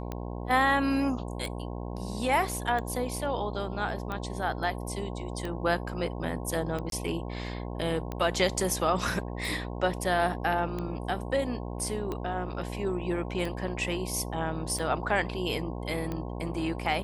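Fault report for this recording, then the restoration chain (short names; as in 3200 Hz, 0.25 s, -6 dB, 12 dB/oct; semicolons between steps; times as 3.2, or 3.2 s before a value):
buzz 60 Hz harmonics 18 -36 dBFS
tick 45 rpm -21 dBFS
6.9–6.92 gap 22 ms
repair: de-click; de-hum 60 Hz, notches 18; interpolate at 6.9, 22 ms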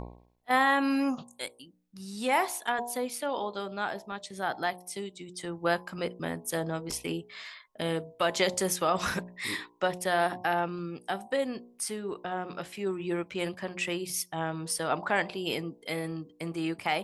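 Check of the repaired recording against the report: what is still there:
none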